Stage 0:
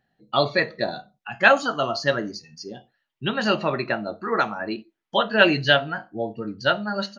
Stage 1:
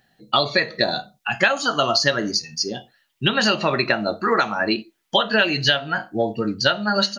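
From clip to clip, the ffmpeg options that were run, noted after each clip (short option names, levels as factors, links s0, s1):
-af "highshelf=f=2800:g=11.5,acompressor=threshold=0.0794:ratio=12,volume=2.37"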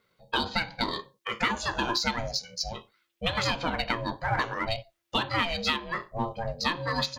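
-filter_complex "[0:a]aeval=exprs='val(0)*sin(2*PI*340*n/s)':c=same,asplit=2[s0][s1];[s1]asoftclip=type=hard:threshold=0.0794,volume=0.355[s2];[s0][s2]amix=inputs=2:normalize=0,volume=0.422"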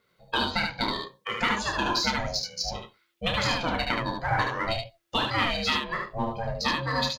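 -af "aecho=1:1:30|74:0.422|0.631"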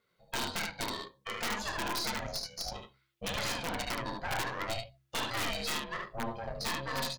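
-af "aeval=exprs='(mod(7.5*val(0)+1,2)-1)/7.5':c=same,aeval=exprs='(tanh(17.8*val(0)+0.65)-tanh(0.65))/17.8':c=same,bandreject=f=65.93:t=h:w=4,bandreject=f=131.86:t=h:w=4,bandreject=f=197.79:t=h:w=4,bandreject=f=263.72:t=h:w=4,bandreject=f=329.65:t=h:w=4,volume=0.668"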